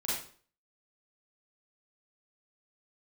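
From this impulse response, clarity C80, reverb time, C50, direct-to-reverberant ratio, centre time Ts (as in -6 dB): 5.5 dB, 0.45 s, 0.5 dB, -8.5 dB, 58 ms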